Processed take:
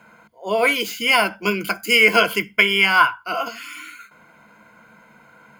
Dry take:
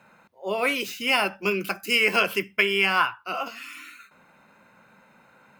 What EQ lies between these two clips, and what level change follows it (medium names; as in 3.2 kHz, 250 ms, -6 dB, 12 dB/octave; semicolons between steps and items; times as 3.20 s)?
rippled EQ curve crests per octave 1.8, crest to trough 10 dB; +4.5 dB